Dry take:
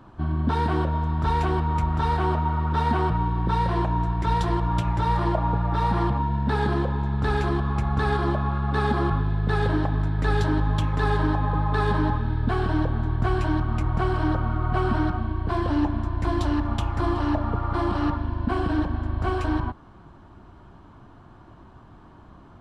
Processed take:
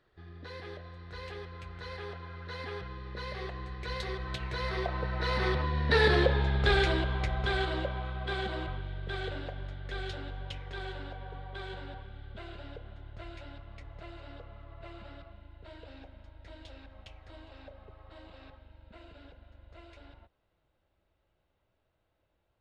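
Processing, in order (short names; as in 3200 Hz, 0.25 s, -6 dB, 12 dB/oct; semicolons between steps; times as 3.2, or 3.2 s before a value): Doppler pass-by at 6.31, 32 m/s, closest 19 m; ten-band EQ 125 Hz -3 dB, 250 Hz -11 dB, 500 Hz +11 dB, 1000 Hz -10 dB, 2000 Hz +10 dB, 4000 Hz +10 dB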